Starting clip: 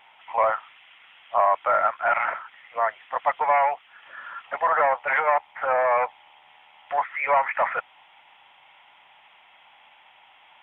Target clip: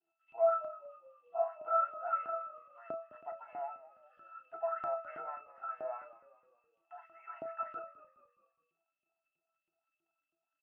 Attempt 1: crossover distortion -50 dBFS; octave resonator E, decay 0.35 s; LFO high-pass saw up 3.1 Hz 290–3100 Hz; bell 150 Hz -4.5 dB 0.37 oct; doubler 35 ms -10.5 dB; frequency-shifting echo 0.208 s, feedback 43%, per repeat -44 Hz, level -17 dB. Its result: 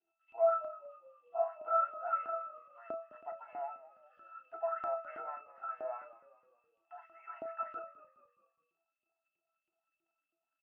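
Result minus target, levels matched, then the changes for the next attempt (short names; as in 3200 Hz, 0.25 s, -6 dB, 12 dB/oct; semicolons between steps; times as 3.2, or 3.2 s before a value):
125 Hz band -5.5 dB
change: bell 150 Hz +7 dB 0.37 oct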